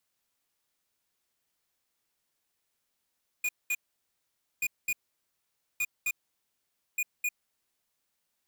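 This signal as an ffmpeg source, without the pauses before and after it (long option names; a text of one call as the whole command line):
ffmpeg -f lavfi -i "aevalsrc='0.0355*(2*lt(mod(2450*t,1),0.5)-1)*clip(min(mod(mod(t,1.18),0.26),0.05-mod(mod(t,1.18),0.26))/0.005,0,1)*lt(mod(t,1.18),0.52)':duration=4.72:sample_rate=44100" out.wav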